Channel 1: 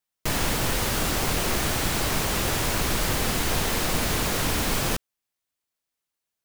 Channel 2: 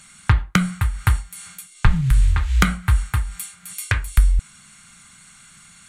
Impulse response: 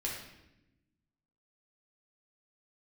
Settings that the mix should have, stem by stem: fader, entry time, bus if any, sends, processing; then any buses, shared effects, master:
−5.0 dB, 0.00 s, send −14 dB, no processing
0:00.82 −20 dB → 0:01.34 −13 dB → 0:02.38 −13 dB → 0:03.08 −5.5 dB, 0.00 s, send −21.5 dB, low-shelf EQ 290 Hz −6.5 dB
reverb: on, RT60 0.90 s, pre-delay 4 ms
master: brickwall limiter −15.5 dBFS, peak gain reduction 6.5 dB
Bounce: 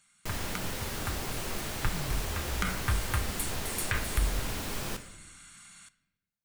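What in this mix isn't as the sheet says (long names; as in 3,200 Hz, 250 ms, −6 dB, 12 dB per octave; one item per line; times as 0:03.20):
stem 1 −5.0 dB → −14.0 dB
reverb return +7.0 dB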